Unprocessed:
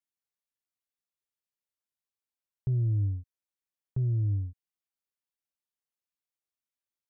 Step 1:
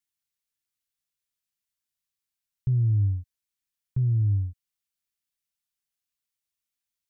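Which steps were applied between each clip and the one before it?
bell 550 Hz -14 dB 2.2 oct; gain +6.5 dB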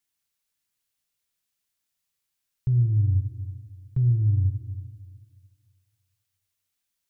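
limiter -23.5 dBFS, peak gain reduction 5.5 dB; Schroeder reverb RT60 1.9 s, combs from 33 ms, DRR 5.5 dB; gain +5.5 dB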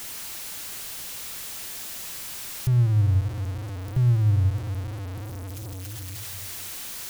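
zero-crossing step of -29.5 dBFS

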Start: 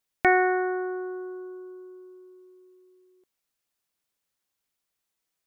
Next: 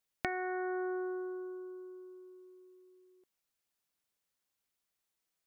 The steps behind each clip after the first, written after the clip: compressor 12:1, threshold -29 dBFS, peak gain reduction 14.5 dB; gain -3.5 dB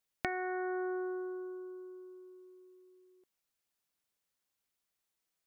nothing audible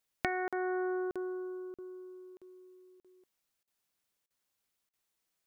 crackling interface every 0.63 s, samples 2048, zero, from 0.48; gain +2.5 dB

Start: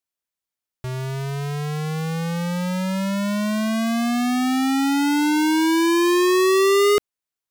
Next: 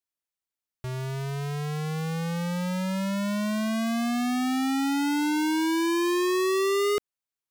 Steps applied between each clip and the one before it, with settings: compressor 3:1, threshold -21 dBFS, peak gain reduction 4 dB; gain -4.5 dB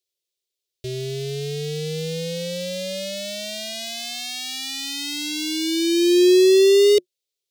EQ curve 160 Hz 0 dB, 250 Hz -25 dB, 360 Hz +12 dB, 570 Hz +8 dB, 1000 Hz -28 dB, 2000 Hz 0 dB, 3700 Hz +13 dB, 11000 Hz +5 dB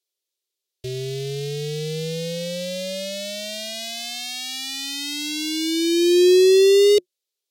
Vorbis 64 kbps 44100 Hz

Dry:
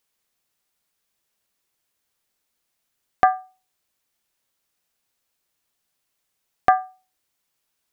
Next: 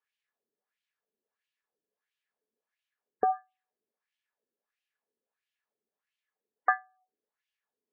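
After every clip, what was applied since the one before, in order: wah 1.5 Hz 350–2900 Hz, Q 2.5; spectral gate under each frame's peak -30 dB strong; small resonant body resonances 220/430/1700 Hz, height 12 dB, ringing for 45 ms; gain -3.5 dB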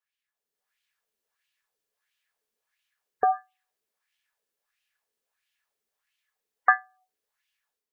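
bell 270 Hz -15 dB 2.4 oct; AGC gain up to 10 dB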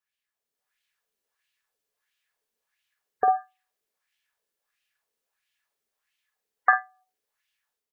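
doubler 48 ms -8 dB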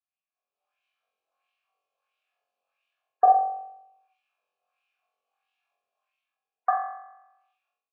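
flutter echo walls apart 3.8 m, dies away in 0.83 s; AGC gain up to 11 dB; vowel filter a; gain -1 dB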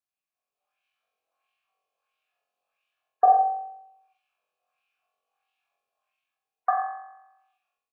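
echo 95 ms -10 dB

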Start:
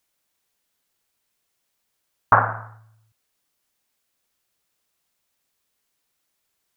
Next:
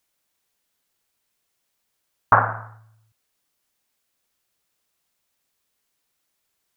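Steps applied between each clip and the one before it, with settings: nothing audible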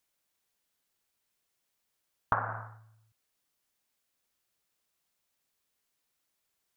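compressor 12:1, threshold -19 dBFS, peak gain reduction 11 dB; gain -5.5 dB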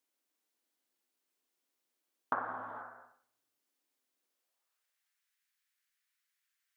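high-pass sweep 290 Hz -> 1700 Hz, 4.23–4.86; non-linear reverb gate 0.5 s flat, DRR 5 dB; gain -6 dB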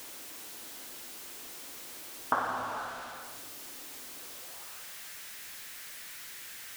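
zero-crossing step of -43 dBFS; gain +4.5 dB

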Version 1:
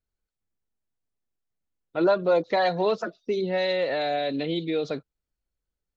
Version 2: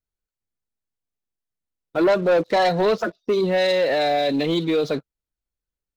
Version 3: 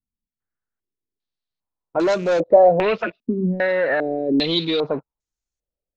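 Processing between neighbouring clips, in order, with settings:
sample leveller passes 2
rattling part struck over -37 dBFS, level -33 dBFS; stepped low-pass 2.5 Hz 230–6600 Hz; gain -1.5 dB

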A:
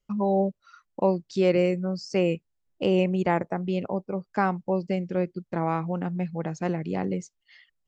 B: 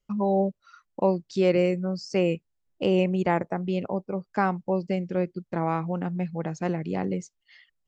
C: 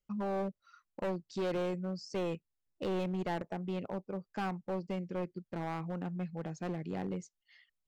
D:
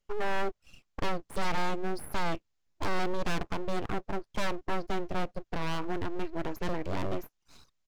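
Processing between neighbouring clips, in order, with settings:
nothing audible
overloaded stage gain 22 dB; gain -8.5 dB
downsampling 16000 Hz; full-wave rectifier; gain +8.5 dB

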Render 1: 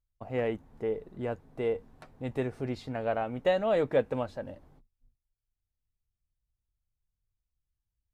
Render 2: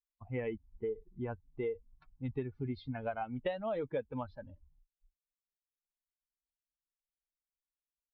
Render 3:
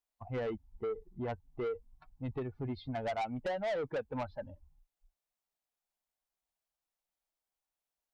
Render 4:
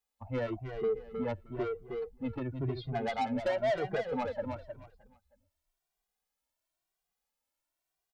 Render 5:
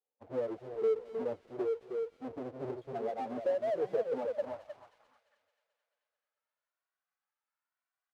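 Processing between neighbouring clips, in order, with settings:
per-bin expansion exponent 2; steep low-pass 4100 Hz 48 dB/oct; compressor 6:1, threshold -38 dBFS, peak gain reduction 15 dB; gain +4.5 dB
bell 730 Hz +10 dB 0.97 oct; soft clip -33.5 dBFS, distortion -8 dB; gain +2 dB
feedback echo 0.312 s, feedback 24%, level -7 dB; endless flanger 2 ms +0.97 Hz; gain +6 dB
half-waves squared off; band-pass sweep 470 Hz -> 1400 Hz, 4.16–5.34; thin delay 0.219 s, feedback 62%, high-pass 2700 Hz, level -8 dB

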